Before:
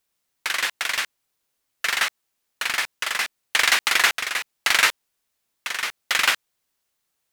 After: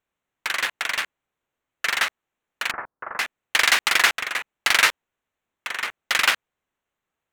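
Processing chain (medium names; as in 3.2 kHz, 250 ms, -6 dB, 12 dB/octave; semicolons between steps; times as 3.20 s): local Wiener filter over 9 samples; 2.71–3.19 s: inverse Chebyshev low-pass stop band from 3.5 kHz, stop band 50 dB; trim +1 dB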